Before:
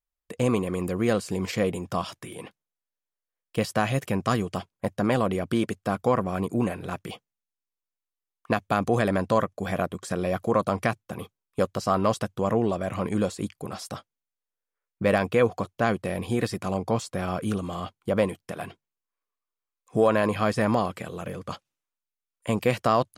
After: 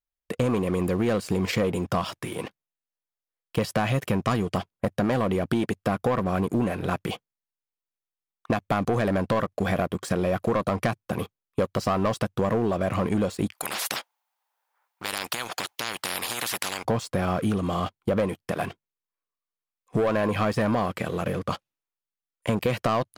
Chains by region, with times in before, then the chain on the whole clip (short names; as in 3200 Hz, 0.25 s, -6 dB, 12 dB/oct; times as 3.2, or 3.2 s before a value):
13.53–16.85 compressor, threshold -23 dBFS + resonant high-pass 840 Hz, resonance Q 5.5 + spectral compressor 10:1
whole clip: bell 7600 Hz -5.5 dB 1.4 oct; sample leveller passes 2; compressor, threshold -21 dBFS